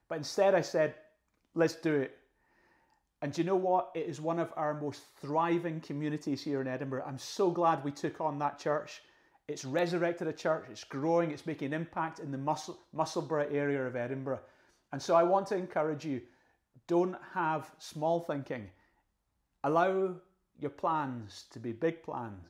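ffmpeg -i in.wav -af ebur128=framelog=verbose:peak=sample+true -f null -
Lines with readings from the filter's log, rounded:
Integrated loudness:
  I:         -33.2 LUFS
  Threshold: -43.8 LUFS
Loudness range:
  LRA:         2.7 LU
  Threshold: -54.1 LUFS
  LRA low:   -35.3 LUFS
  LRA high:  -32.6 LUFS
Sample peak:
  Peak:      -14.1 dBFS
True peak:
  Peak:      -14.1 dBFS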